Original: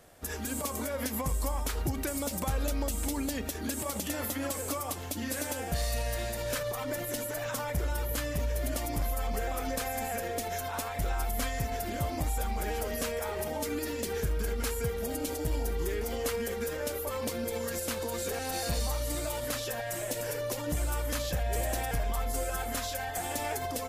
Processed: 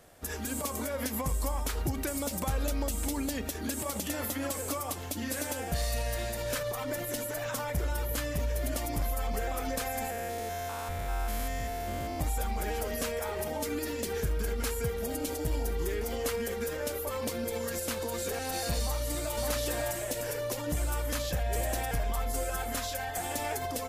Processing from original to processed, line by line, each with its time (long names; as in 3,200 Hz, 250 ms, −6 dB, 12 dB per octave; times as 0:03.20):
0:10.10–0:12.20: spectrum averaged block by block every 200 ms
0:18.81–0:19.35: delay throw 560 ms, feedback 15%, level −2 dB